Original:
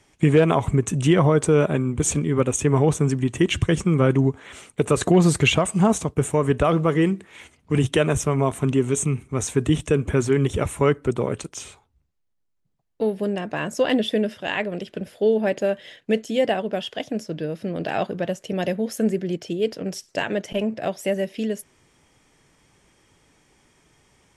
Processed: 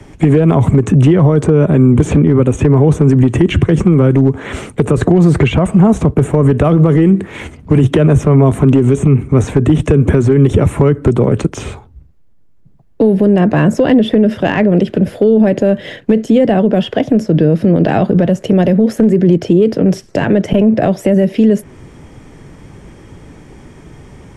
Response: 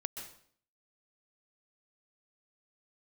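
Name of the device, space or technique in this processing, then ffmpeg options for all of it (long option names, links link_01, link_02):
mastering chain: -filter_complex "[0:a]equalizer=frequency=1700:width_type=o:width=1.4:gain=4,acrossover=split=94|260|3200[link_01][link_02][link_03][link_04];[link_01]acompressor=threshold=-46dB:ratio=4[link_05];[link_02]acompressor=threshold=-30dB:ratio=4[link_06];[link_03]acompressor=threshold=-24dB:ratio=4[link_07];[link_04]acompressor=threshold=-42dB:ratio=4[link_08];[link_05][link_06][link_07][link_08]amix=inputs=4:normalize=0,acompressor=threshold=-30dB:ratio=1.5,asoftclip=type=tanh:threshold=-16dB,tiltshelf=frequency=730:gain=9.5,asoftclip=type=hard:threshold=-14.5dB,alimiter=level_in=19.5dB:limit=-1dB:release=50:level=0:latency=1,volume=-1dB"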